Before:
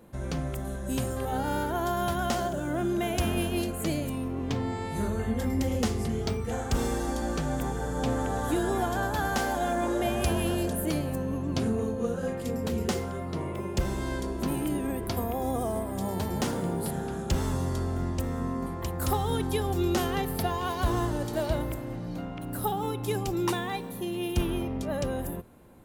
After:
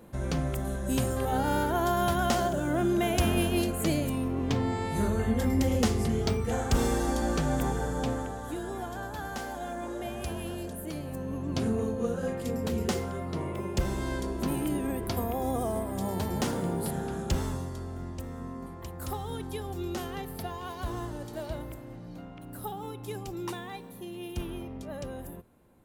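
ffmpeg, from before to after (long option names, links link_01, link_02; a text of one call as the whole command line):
ffmpeg -i in.wav -af "volume=10dB,afade=type=out:start_time=7.72:duration=0.65:silence=0.298538,afade=type=in:start_time=10.93:duration=0.79:silence=0.398107,afade=type=out:start_time=17.27:duration=0.44:silence=0.421697" out.wav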